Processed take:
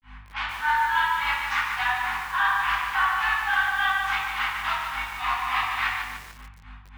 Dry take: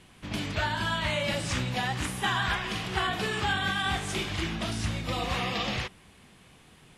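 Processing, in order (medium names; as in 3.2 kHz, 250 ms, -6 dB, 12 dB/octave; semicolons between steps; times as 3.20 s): in parallel at -5 dB: wavefolder -25 dBFS; on the sum: steep high-pass 840 Hz 72 dB/octave; hum 50 Hz, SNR 28 dB; granulator 222 ms, grains 3.5 per s, spray 29 ms, pitch spread up and down by 0 st; low-pass 1.5 kHz 12 dB/octave; simulated room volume 140 m³, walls mixed, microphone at 2.2 m; reverse; compression, threshold -26 dBFS, peak gain reduction 6 dB; reverse; bit-crushed delay 147 ms, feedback 55%, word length 8-bit, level -5.5 dB; trim +7 dB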